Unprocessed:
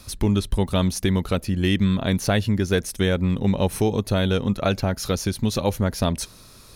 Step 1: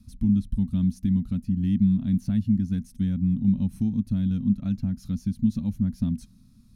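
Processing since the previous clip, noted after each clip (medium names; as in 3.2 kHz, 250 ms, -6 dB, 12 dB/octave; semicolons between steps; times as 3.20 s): FFT filter 130 Hz 0 dB, 240 Hz +9 dB, 400 Hz -28 dB, 740 Hz -23 dB, 6 kHz -17 dB; trim -5 dB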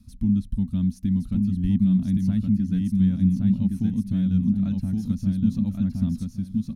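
feedback delay 1117 ms, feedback 21%, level -3 dB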